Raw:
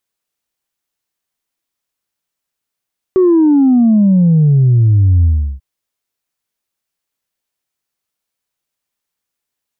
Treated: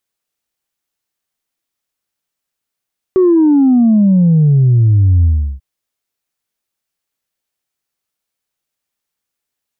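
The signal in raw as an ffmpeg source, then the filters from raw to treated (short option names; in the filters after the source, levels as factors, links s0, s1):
-f lavfi -i "aevalsrc='0.473*clip((2.44-t)/0.36,0,1)*tanh(1*sin(2*PI*380*2.44/log(65/380)*(exp(log(65/380)*t/2.44)-1)))/tanh(1)':d=2.44:s=44100"
-af "bandreject=f=1000:w=28"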